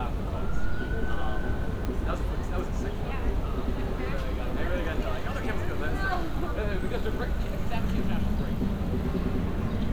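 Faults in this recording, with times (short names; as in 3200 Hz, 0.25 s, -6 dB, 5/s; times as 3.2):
1.85 pop -19 dBFS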